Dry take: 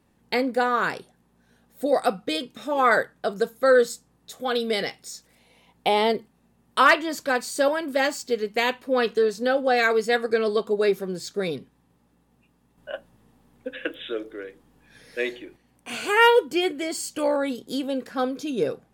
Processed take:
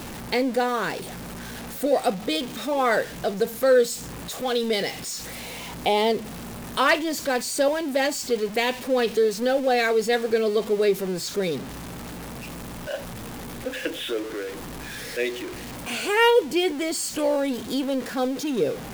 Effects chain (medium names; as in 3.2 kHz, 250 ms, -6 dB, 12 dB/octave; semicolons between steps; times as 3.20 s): jump at every zero crossing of -30.5 dBFS; dynamic bell 1.3 kHz, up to -7 dB, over -37 dBFS, Q 1.6